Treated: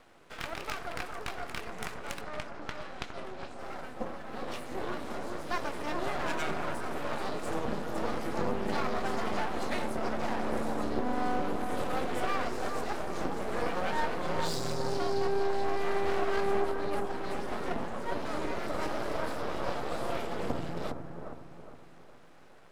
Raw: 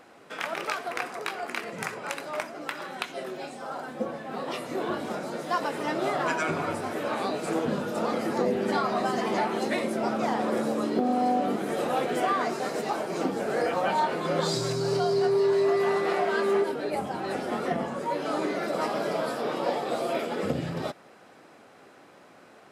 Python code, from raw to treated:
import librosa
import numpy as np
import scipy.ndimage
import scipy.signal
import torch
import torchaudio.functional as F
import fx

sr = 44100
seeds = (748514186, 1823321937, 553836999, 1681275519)

p1 = np.maximum(x, 0.0)
p2 = fx.air_absorb(p1, sr, metres=51.0, at=(2.21, 3.59))
p3 = p2 + fx.echo_bbd(p2, sr, ms=411, stages=4096, feedback_pct=43, wet_db=-6, dry=0)
y = F.gain(torch.from_numpy(p3), -2.5).numpy()